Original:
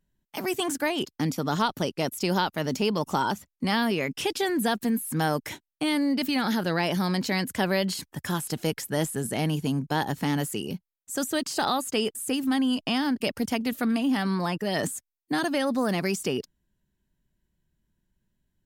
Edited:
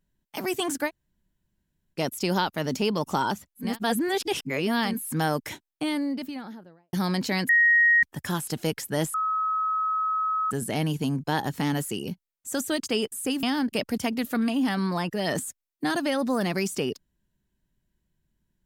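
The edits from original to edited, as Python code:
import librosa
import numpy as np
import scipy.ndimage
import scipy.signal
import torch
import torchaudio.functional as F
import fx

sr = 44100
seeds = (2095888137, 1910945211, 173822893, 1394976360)

y = fx.studio_fade_out(x, sr, start_s=5.52, length_s=1.41)
y = fx.edit(y, sr, fx.room_tone_fill(start_s=0.88, length_s=1.07, crossfade_s=0.06),
    fx.reverse_span(start_s=3.67, length_s=1.24, crossfade_s=0.24),
    fx.bleep(start_s=7.49, length_s=0.54, hz=1880.0, db=-15.5),
    fx.insert_tone(at_s=9.14, length_s=1.37, hz=1280.0, db=-23.0),
    fx.cut(start_s=11.49, length_s=0.4),
    fx.cut(start_s=12.46, length_s=0.45), tone=tone)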